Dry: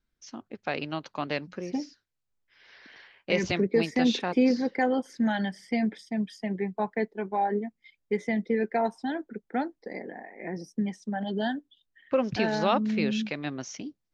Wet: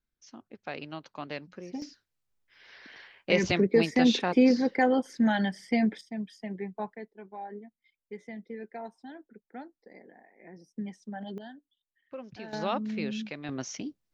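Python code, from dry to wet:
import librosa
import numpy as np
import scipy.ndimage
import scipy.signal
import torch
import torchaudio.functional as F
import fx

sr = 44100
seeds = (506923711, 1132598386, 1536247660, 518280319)

y = fx.gain(x, sr, db=fx.steps((0.0, -7.0), (1.82, 1.5), (6.01, -6.0), (6.95, -14.0), (10.76, -7.5), (11.38, -16.5), (12.53, -6.0), (13.49, 1.0)))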